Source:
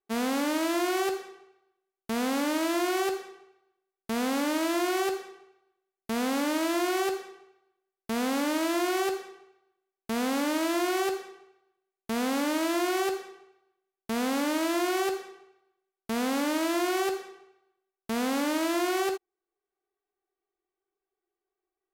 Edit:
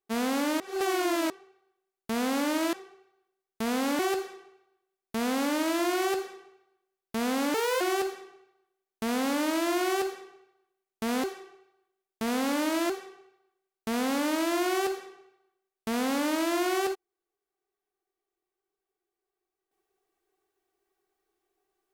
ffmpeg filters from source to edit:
-filter_complex "[0:a]asplit=9[s0][s1][s2][s3][s4][s5][s6][s7][s8];[s0]atrim=end=0.602[s9];[s1]atrim=start=0.598:end=1.302,asetpts=PTS-STARTPTS,areverse[s10];[s2]atrim=start=1.298:end=2.732[s11];[s3]atrim=start=3.218:end=4.482[s12];[s4]atrim=start=4.938:end=8.494[s13];[s5]atrim=start=8.49:end=8.88,asetpts=PTS-STARTPTS,asetrate=64386,aresample=44100,atrim=end_sample=11780,asetpts=PTS-STARTPTS[s14];[s6]atrim=start=8.876:end=12.312[s15];[s7]atrim=start=13.118:end=14.782[s16];[s8]atrim=start=15.118[s17];[s9][s10]acrossfade=d=0.004:c1=hsin:c2=hsin[s18];[s18][s11]acrossfade=d=0.004:c1=hsin:c2=hsin[s19];[s19][s12]acrossfade=d=0.004:c1=hsin:c2=hsin[s20];[s20][s13]acrossfade=d=0.004:c1=hsin:c2=hsin[s21];[s21][s14]acrossfade=d=0.004:c1=hsin:c2=hsin[s22];[s22][s15]acrossfade=d=0.004:c1=hsin:c2=hsin[s23];[s23][s16]acrossfade=d=0.004:c1=hsin:c2=hsin[s24];[s24][s17]acrossfade=d=0.004:c1=hsin:c2=hsin"

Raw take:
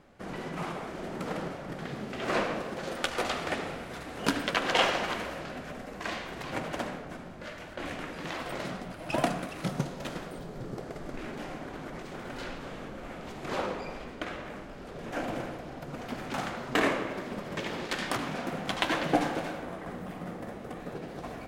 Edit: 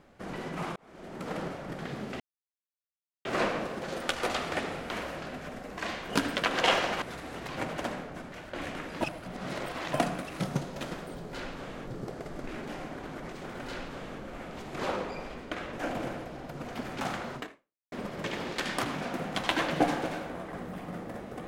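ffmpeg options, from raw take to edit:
-filter_complex "[0:a]asplit=14[s0][s1][s2][s3][s4][s5][s6][s7][s8][s9][s10][s11][s12][s13];[s0]atrim=end=0.76,asetpts=PTS-STARTPTS,afade=t=out:st=0.756:d=0.004:c=hsin[s14];[s1]atrim=start=0.76:end=2.2,asetpts=PTS-STARTPTS,afade=t=in:d=0.65,afade=t=out:st=1.436:d=0.004:c=hsin,apad=pad_dur=1.05[s15];[s2]atrim=start=2.2:end=3.852,asetpts=PTS-STARTPTS,afade=t=in:d=0.004:c=hsin[s16];[s3]atrim=start=5.128:end=6.332[s17];[s4]atrim=start=4.208:end=5.132[s18];[s5]atrim=start=3.848:end=4.212[s19];[s6]atrim=start=6.328:end=7.272[s20];[s7]atrim=start=7.558:end=8.252[s21];[s8]atrim=start=8.248:end=9.172,asetpts=PTS-STARTPTS,areverse[s22];[s9]atrim=start=9.168:end=10.572[s23];[s10]atrim=start=12.368:end=12.912[s24];[s11]atrim=start=10.568:end=14.432[s25];[s12]atrim=start=15.058:end=17.25,asetpts=PTS-STARTPTS,afade=t=out:st=1.632:d=0.56:c=exp[s26];[s13]atrim=start=17.25,asetpts=PTS-STARTPTS,afade=t=in:d=0.004:c=hsin[s27];[s14][s15][s16]concat=n=3:v=0:a=1[s28];[s28][s17]acrossfade=d=0.004:c1=hsin:c2=hsin[s29];[s29][s18]acrossfade=d=0.004:c1=hsin:c2=hsin[s30];[s30][s19]acrossfade=d=0.004:c1=hsin:c2=hsin[s31];[s31][s20]acrossfade=d=0.004:c1=hsin:c2=hsin[s32];[s32][s21]acrossfade=d=0.004:c1=hsin:c2=hsin[s33];[s33][s22]acrossfade=d=0.004:c1=hsin:c2=hsin[s34];[s34][s23]acrossfade=d=0.004:c1=hsin:c2=hsin[s35];[s35][s24]acrossfade=d=0.004:c1=hsin:c2=hsin[s36];[s36][s25]acrossfade=d=0.004:c1=hsin:c2=hsin[s37];[s26][s27]concat=n=2:v=0:a=1[s38];[s37][s38]acrossfade=d=0.004:c1=hsin:c2=hsin"

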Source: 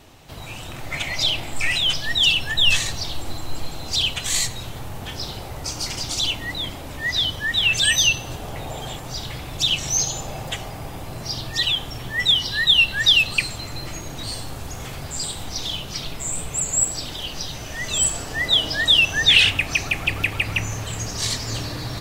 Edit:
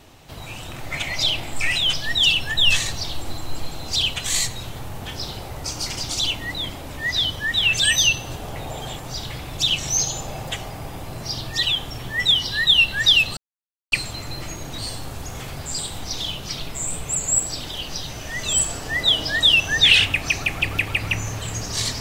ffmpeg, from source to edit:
-filter_complex "[0:a]asplit=2[s0][s1];[s0]atrim=end=13.37,asetpts=PTS-STARTPTS,afade=t=out:st=13.366:d=0.004:c=hsin,apad=pad_dur=0.55[s2];[s1]atrim=start=13.37,asetpts=PTS-STARTPTS,afade=t=in:d=0.004:c=hsin[s3];[s2][s3]concat=n=2:v=0:a=1"

